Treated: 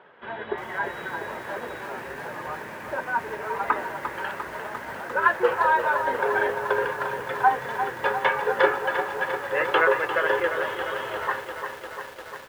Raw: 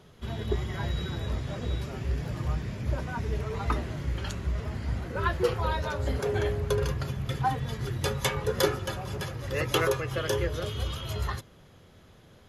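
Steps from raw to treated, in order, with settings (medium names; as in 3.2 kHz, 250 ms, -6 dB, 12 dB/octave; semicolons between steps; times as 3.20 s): cabinet simulation 430–2700 Hz, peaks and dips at 540 Hz +4 dB, 910 Hz +9 dB, 1.6 kHz +10 dB; speakerphone echo 350 ms, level -18 dB; bit-crushed delay 349 ms, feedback 80%, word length 8-bit, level -9 dB; trim +4 dB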